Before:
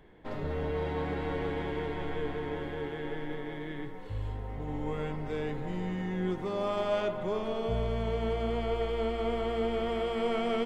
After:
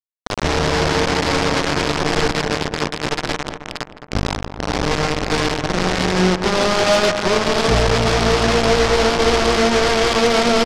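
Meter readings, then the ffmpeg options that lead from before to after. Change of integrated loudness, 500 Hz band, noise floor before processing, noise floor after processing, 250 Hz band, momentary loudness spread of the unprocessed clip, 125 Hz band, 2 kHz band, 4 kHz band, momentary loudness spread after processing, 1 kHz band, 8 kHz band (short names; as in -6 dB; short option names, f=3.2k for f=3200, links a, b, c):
+16.0 dB, +13.5 dB, -40 dBFS, -38 dBFS, +14.0 dB, 8 LU, +13.5 dB, +21.5 dB, +24.0 dB, 9 LU, +17.5 dB, n/a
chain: -filter_complex "[0:a]aresample=11025,acrusher=bits=4:mix=0:aa=0.000001,aresample=44100,aeval=exprs='0.158*(cos(1*acos(clip(val(0)/0.158,-1,1)))-cos(1*PI/2))+0.0708*(cos(5*acos(clip(val(0)/0.158,-1,1)))-cos(5*PI/2))':c=same,asplit=2[a][b];[b]adelay=213,lowpass=f=1.5k:p=1,volume=-8.5dB,asplit=2[c][d];[d]adelay=213,lowpass=f=1.5k:p=1,volume=0.53,asplit=2[e][f];[f]adelay=213,lowpass=f=1.5k:p=1,volume=0.53,asplit=2[g][h];[h]adelay=213,lowpass=f=1.5k:p=1,volume=0.53,asplit=2[i][j];[j]adelay=213,lowpass=f=1.5k:p=1,volume=0.53,asplit=2[k][l];[l]adelay=213,lowpass=f=1.5k:p=1,volume=0.53[m];[a][c][e][g][i][k][m]amix=inputs=7:normalize=0,volume=8dB"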